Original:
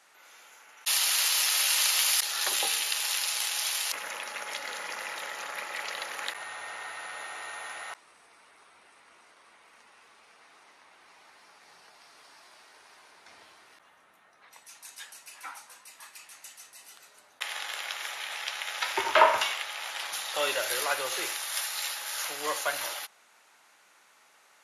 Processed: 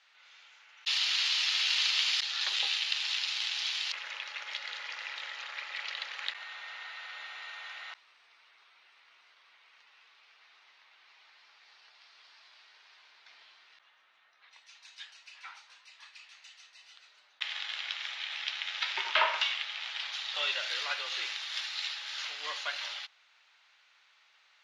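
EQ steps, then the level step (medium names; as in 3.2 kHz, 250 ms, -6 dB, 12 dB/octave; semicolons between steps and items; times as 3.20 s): band-pass filter 3.8 kHz, Q 1.4; distance through air 170 m; +6.0 dB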